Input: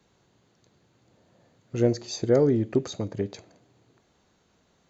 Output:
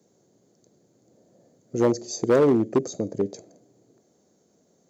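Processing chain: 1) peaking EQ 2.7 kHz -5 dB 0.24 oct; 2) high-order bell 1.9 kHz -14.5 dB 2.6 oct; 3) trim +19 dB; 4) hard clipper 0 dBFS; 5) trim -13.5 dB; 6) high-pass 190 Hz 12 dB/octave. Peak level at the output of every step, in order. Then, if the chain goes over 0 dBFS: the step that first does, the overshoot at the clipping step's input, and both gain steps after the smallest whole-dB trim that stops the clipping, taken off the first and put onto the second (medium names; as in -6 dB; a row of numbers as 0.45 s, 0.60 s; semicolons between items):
-8.5 dBFS, -9.5 dBFS, +9.5 dBFS, 0.0 dBFS, -13.5 dBFS, -8.5 dBFS; step 3, 9.5 dB; step 3 +9 dB, step 5 -3.5 dB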